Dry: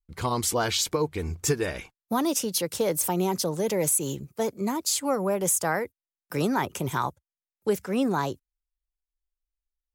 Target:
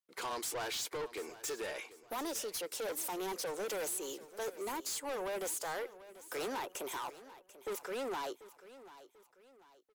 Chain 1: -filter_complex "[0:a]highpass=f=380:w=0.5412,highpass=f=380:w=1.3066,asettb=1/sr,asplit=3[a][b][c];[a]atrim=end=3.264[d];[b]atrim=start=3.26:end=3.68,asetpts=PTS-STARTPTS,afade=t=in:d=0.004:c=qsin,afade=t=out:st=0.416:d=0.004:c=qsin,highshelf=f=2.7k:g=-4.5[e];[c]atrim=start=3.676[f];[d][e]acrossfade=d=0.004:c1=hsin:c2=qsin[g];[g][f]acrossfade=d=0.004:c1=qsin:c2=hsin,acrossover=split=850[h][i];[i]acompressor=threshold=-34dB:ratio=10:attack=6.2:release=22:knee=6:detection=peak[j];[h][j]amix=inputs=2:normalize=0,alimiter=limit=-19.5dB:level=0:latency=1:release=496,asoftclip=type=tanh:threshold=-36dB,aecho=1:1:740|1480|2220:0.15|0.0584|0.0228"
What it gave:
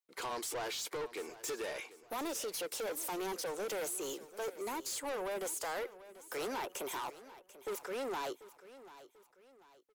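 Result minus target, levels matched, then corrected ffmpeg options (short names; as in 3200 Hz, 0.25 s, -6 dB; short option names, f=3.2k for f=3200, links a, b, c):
compressor: peak gain reduction +13 dB
-filter_complex "[0:a]highpass=f=380:w=0.5412,highpass=f=380:w=1.3066,asettb=1/sr,asplit=3[a][b][c];[a]atrim=end=3.264[d];[b]atrim=start=3.26:end=3.68,asetpts=PTS-STARTPTS,afade=t=in:d=0.004:c=qsin,afade=t=out:st=0.416:d=0.004:c=qsin,highshelf=f=2.7k:g=-4.5[e];[c]atrim=start=3.676[f];[d][e]acrossfade=d=0.004:c1=hsin:c2=qsin[g];[g][f]acrossfade=d=0.004:c1=qsin:c2=hsin,alimiter=limit=-19.5dB:level=0:latency=1:release=496,asoftclip=type=tanh:threshold=-36dB,aecho=1:1:740|1480|2220:0.15|0.0584|0.0228"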